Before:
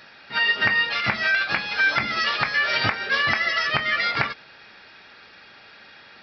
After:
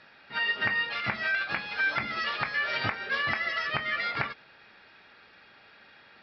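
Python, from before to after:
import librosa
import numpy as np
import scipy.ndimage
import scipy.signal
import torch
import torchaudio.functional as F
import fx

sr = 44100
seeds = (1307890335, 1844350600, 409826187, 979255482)

y = scipy.signal.sosfilt(scipy.signal.bessel(2, 3600.0, 'lowpass', norm='mag', fs=sr, output='sos'), x)
y = F.gain(torch.from_numpy(y), -6.5).numpy()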